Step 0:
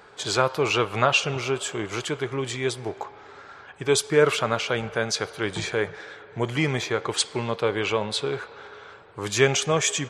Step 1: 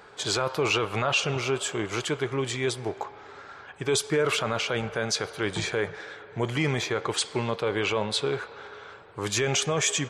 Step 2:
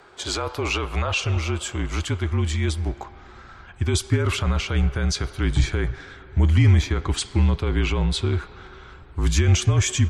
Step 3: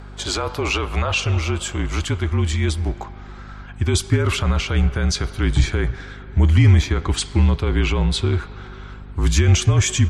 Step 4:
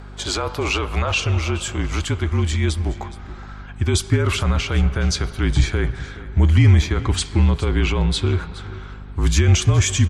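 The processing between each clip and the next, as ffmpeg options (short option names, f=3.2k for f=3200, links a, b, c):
-af "alimiter=limit=-14.5dB:level=0:latency=1:release=13"
-af "asubboost=boost=11.5:cutoff=160,afreqshift=-40"
-af "aeval=exprs='val(0)+0.0112*(sin(2*PI*50*n/s)+sin(2*PI*2*50*n/s)/2+sin(2*PI*3*50*n/s)/3+sin(2*PI*4*50*n/s)/4+sin(2*PI*5*50*n/s)/5)':c=same,volume=3dB"
-af "aecho=1:1:419:0.141"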